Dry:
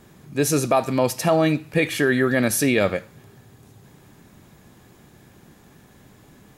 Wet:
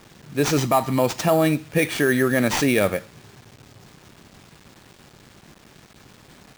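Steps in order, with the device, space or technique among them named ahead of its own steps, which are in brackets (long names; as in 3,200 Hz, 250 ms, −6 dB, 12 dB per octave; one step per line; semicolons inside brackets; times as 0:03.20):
0:00.57–0:00.99: comb filter 1 ms, depth 51%
early 8-bit sampler (sample-rate reduction 12,000 Hz, jitter 0%; bit reduction 8 bits)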